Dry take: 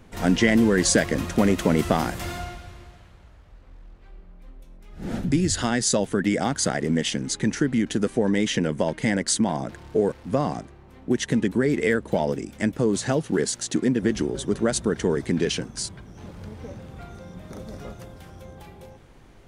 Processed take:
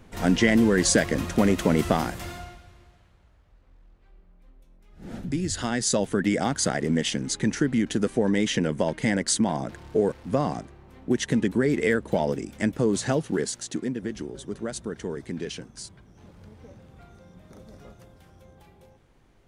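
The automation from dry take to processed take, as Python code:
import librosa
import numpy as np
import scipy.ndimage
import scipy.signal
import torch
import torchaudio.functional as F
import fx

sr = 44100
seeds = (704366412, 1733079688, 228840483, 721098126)

y = fx.gain(x, sr, db=fx.line((1.92, -1.0), (2.65, -9.0), (5.02, -9.0), (6.04, -1.0), (13.13, -1.0), (14.1, -9.5)))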